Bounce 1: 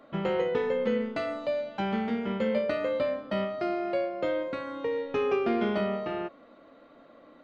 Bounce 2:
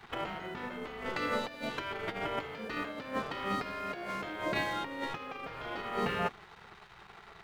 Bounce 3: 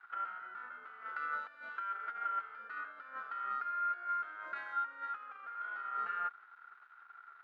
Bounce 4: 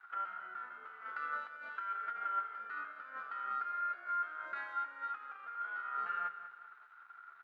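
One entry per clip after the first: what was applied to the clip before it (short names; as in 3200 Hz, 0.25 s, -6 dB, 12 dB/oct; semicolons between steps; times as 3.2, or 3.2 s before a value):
sample leveller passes 2; negative-ratio compressor -27 dBFS, ratio -0.5; spectral gate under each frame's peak -10 dB weak
sample leveller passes 1; band-pass 1400 Hz, Q 15; gain +4.5 dB
flange 0.39 Hz, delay 9.9 ms, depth 2.1 ms, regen +68%; feedback echo 0.196 s, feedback 42%, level -13 dB; gain +4 dB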